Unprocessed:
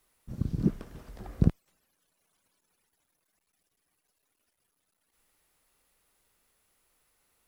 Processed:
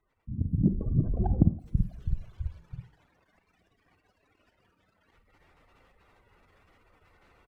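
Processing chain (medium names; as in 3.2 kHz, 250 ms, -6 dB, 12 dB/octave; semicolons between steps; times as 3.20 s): peaking EQ 89 Hz +7.5 dB 0.51 oct; spectral gate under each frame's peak -15 dB strong; frequency-shifting echo 327 ms, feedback 39%, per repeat -53 Hz, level -11.5 dB; level-controlled noise filter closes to 2.9 kHz, open at -25 dBFS; compression 8:1, threshold -35 dBFS, peak gain reduction 21 dB; Schroeder reverb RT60 0.4 s, combs from 33 ms, DRR 10.5 dB; level rider gain up to 15.5 dB; sliding maximum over 3 samples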